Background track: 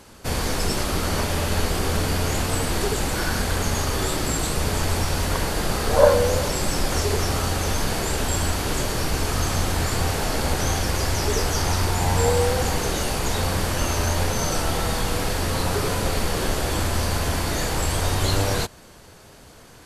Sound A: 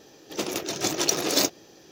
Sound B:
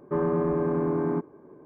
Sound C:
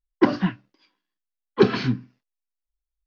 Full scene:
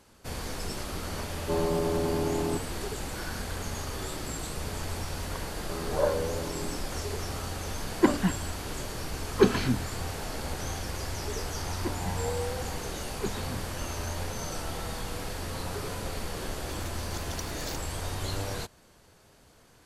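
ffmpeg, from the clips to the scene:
ffmpeg -i bed.wav -i cue0.wav -i cue1.wav -i cue2.wav -filter_complex "[2:a]asplit=2[link_01][link_02];[3:a]asplit=2[link_03][link_04];[0:a]volume=-11.5dB[link_05];[link_01]lowpass=frequency=780:width_type=q:width=2.5,atrim=end=1.65,asetpts=PTS-STARTPTS,volume=-5.5dB,afade=type=in:duration=0.004:curve=hsin,afade=type=out:start_time=1.646:duration=0.004:curve=hsin,adelay=1370[link_06];[link_02]atrim=end=1.65,asetpts=PTS-STARTPTS,volume=-13dB,afade=type=in:duration=0.004:curve=hsin,afade=type=out:start_time=1.646:duration=0.004:curve=hsin,adelay=245637S[link_07];[link_03]atrim=end=3.06,asetpts=PTS-STARTPTS,volume=-4dB,afade=type=in:duration=0.004:curve=hsin,afade=type=out:start_time=3.056:duration=0.004:curve=hsin,adelay=7810[link_08];[link_04]atrim=end=3.06,asetpts=PTS-STARTPTS,volume=-17.5dB,afade=type=in:duration=0.004:curve=hsin,afade=type=out:start_time=3.056:duration=0.004:curve=hsin,adelay=11630[link_09];[1:a]atrim=end=1.91,asetpts=PTS-STARTPTS,volume=-17.5dB,afade=type=in:duration=0.004:curve=hsin,afade=type=out:start_time=1.906:duration=0.004:curve=hsin,adelay=16300[link_10];[link_05][link_06][link_07][link_08][link_09][link_10]amix=inputs=6:normalize=0" out.wav

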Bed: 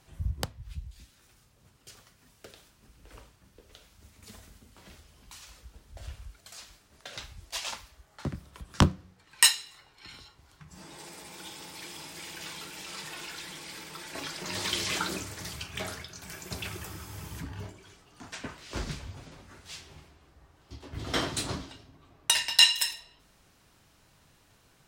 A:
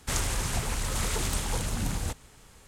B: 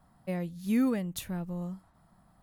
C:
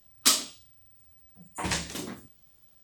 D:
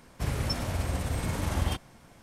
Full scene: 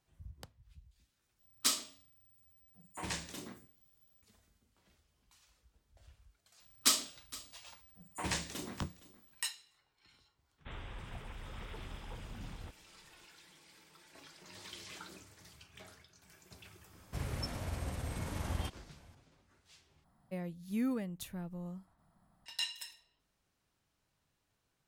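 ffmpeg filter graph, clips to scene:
ffmpeg -i bed.wav -i cue0.wav -i cue1.wav -i cue2.wav -i cue3.wav -filter_complex "[3:a]asplit=2[link_01][link_02];[0:a]volume=-18.5dB[link_03];[link_01]bandreject=frequency=89.74:width_type=h:width=4,bandreject=frequency=179.48:width_type=h:width=4,bandreject=frequency=269.22:width_type=h:width=4,bandreject=frequency=358.96:width_type=h:width=4,bandreject=frequency=448.7:width_type=h:width=4,bandreject=frequency=538.44:width_type=h:width=4,bandreject=frequency=628.18:width_type=h:width=4,bandreject=frequency=717.92:width_type=h:width=4,bandreject=frequency=807.66:width_type=h:width=4,bandreject=frequency=897.4:width_type=h:width=4,bandreject=frequency=987.14:width_type=h:width=4,bandreject=frequency=1076.88:width_type=h:width=4,bandreject=frequency=1166.62:width_type=h:width=4,bandreject=frequency=1256.36:width_type=h:width=4,bandreject=frequency=1346.1:width_type=h:width=4,bandreject=frequency=1435.84:width_type=h:width=4,bandreject=frequency=1525.58:width_type=h:width=4,bandreject=frequency=1615.32:width_type=h:width=4,bandreject=frequency=1705.06:width_type=h:width=4,bandreject=frequency=1794.8:width_type=h:width=4,bandreject=frequency=1884.54:width_type=h:width=4,bandreject=frequency=1974.28:width_type=h:width=4,bandreject=frequency=2064.02:width_type=h:width=4,bandreject=frequency=2153.76:width_type=h:width=4,bandreject=frequency=2243.5:width_type=h:width=4,bandreject=frequency=2333.24:width_type=h:width=4,bandreject=frequency=2422.98:width_type=h:width=4,bandreject=frequency=2512.72:width_type=h:width=4,bandreject=frequency=2602.46:width_type=h:width=4,bandreject=frequency=2692.2:width_type=h:width=4,bandreject=frequency=2781.94:width_type=h:width=4,bandreject=frequency=2871.68:width_type=h:width=4[link_04];[link_02]aecho=1:1:465:0.112[link_05];[1:a]aresample=8000,aresample=44100[link_06];[link_03]asplit=3[link_07][link_08][link_09];[link_07]atrim=end=1.394[link_10];[link_04]atrim=end=2.83,asetpts=PTS-STARTPTS,volume=-9.5dB[link_11];[link_08]atrim=start=4.216:end=20.044[link_12];[2:a]atrim=end=2.42,asetpts=PTS-STARTPTS,volume=-7.5dB[link_13];[link_09]atrim=start=22.456[link_14];[link_05]atrim=end=2.83,asetpts=PTS-STARTPTS,volume=-6.5dB,afade=type=in:duration=0.004:curve=hsin,afade=type=out:start_time=2.826:duration=0.004:curve=hsin,adelay=6600[link_15];[link_06]atrim=end=2.67,asetpts=PTS-STARTPTS,volume=-16dB,afade=type=in:duration=0.004:curve=hsin,afade=type=out:start_time=2.666:duration=0.004:curve=hsin,adelay=466578S[link_16];[4:a]atrim=end=2.22,asetpts=PTS-STARTPTS,volume=-9dB,afade=type=in:duration=0.004:curve=hsin,afade=type=out:start_time=2.216:duration=0.004:curve=hsin,adelay=16930[link_17];[link_10][link_11]acrossfade=duration=0.004:curve1=hsin:curve2=hsin[link_18];[link_18][link_12]acrossfade=duration=0.004:curve1=hsin:curve2=hsin[link_19];[link_19][link_13]acrossfade=duration=0.004:curve1=hsin:curve2=hsin[link_20];[link_20][link_14]acrossfade=duration=0.004:curve1=hsin:curve2=hsin[link_21];[link_21][link_15][link_16][link_17]amix=inputs=4:normalize=0" out.wav

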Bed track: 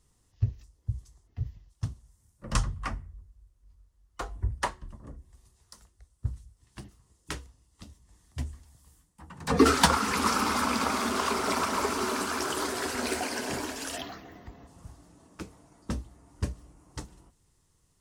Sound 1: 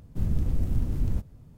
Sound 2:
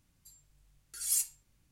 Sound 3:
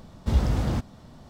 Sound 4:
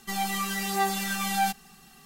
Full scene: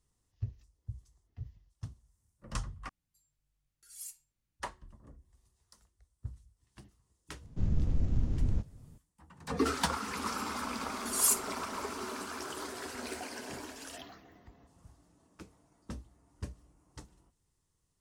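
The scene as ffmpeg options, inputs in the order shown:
ffmpeg -i bed.wav -i cue0.wav -i cue1.wav -filter_complex "[2:a]asplit=2[link_01][link_02];[0:a]volume=-10dB[link_03];[1:a]aresample=16000,aresample=44100[link_04];[link_02]acontrast=25[link_05];[link_03]asplit=2[link_06][link_07];[link_06]atrim=end=2.894[link_08];[link_01]atrim=end=1.71,asetpts=PTS-STARTPTS,volume=-15.5dB[link_09];[link_07]atrim=start=4.596[link_10];[link_04]atrim=end=1.57,asetpts=PTS-STARTPTS,volume=-3.5dB,afade=type=in:duration=0.004:curve=hsin,afade=type=out:start_time=1.566:duration=0.004:curve=hsin,adelay=7410[link_11];[link_05]atrim=end=1.71,asetpts=PTS-STARTPTS,volume=-2dB,afade=type=in:duration=0.004:curve=hsin,afade=type=out:start_time=1.706:duration=0.004:curve=hsin,adelay=10120[link_12];[link_08][link_09]acrossfade=duration=0.004:curve1=hsin:curve2=hsin[link_13];[link_13][link_10]acrossfade=duration=0.004:curve1=hsin:curve2=hsin[link_14];[link_14][link_11][link_12]amix=inputs=3:normalize=0" out.wav

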